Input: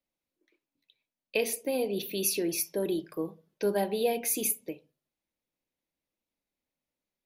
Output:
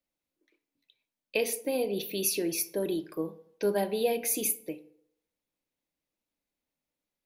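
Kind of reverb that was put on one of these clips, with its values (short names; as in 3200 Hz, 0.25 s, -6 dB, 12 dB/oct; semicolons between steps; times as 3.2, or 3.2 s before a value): FDN reverb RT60 0.75 s, low-frequency decay 0.8×, high-frequency decay 0.6×, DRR 14 dB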